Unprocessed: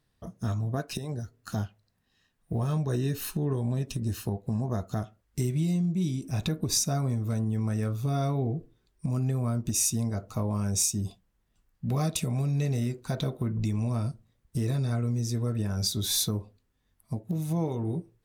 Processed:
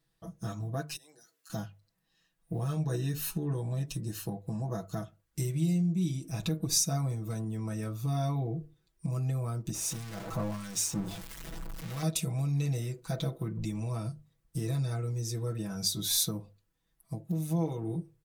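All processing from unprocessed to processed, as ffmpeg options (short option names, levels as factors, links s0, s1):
-filter_complex "[0:a]asettb=1/sr,asplit=3[s0][s1][s2];[s0]atrim=end=0.964[s3];[s1]atrim=start=0.96:end=1.5,asetpts=PTS-STARTPTS,afade=t=in:d=0.004:c=qsin,afade=t=out:st=0.536:d=0.004:c=qsin,highpass=f=220:w=0.5412,highpass=f=220:w=1.3066,tiltshelf=f=1100:g=-8,acompressor=threshold=0.002:ratio=4:attack=3.2:release=140:knee=1:detection=peak[s4];[s2]atrim=start=1.496[s5];[s3][s4]acrossfade=d=0.004:c1=hsin:c2=qsin[s6];[s6][s5]acrossfade=d=0.004:c1=qsin:c2=hsin,asettb=1/sr,asplit=3[s7][s8][s9];[s7]atrim=end=9.744[s10];[s8]atrim=start=9.74:end=12.03,asetpts=PTS-STARTPTS,afade=t=in:d=0.004:c=qsin,afade=t=out:st=2.286:d=0.004:c=qsin,aeval=exprs='val(0)+0.5*0.0422*sgn(val(0))':c=same,highshelf=f=5900:g=-6,acrossover=split=1400[s11][s12];[s11]aeval=exprs='val(0)*(1-0.7/2+0.7/2*cos(2*PI*1.6*n/s))':c=same[s13];[s12]aeval=exprs='val(0)*(1-0.7/2-0.7/2*cos(2*PI*1.6*n/s))':c=same[s14];[s13][s14]amix=inputs=2:normalize=0[s15];[s9]atrim=start=12.026[s16];[s10][s15]acrossfade=d=0.004:c1=hsin:c2=qsin[s17];[s17][s16]acrossfade=d=0.004:c1=qsin:c2=hsin,highshelf=f=5400:g=5,bandreject=f=50:t=h:w=6,bandreject=f=100:t=h:w=6,bandreject=f=150:t=h:w=6,aecho=1:1:6.1:0.95,volume=0.473"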